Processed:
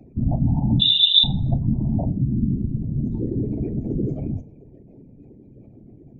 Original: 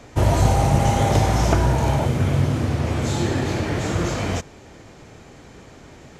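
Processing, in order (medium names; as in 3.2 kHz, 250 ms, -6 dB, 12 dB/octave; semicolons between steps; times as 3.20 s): spectral contrast enhancement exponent 3.2; high-order bell 1.3 kHz -14 dB 1.3 oct; 0.80–1.24 s: frequency inversion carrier 3.7 kHz; whisper effect; reverberation RT60 0.40 s, pre-delay 3 ms, DRR 11.5 dB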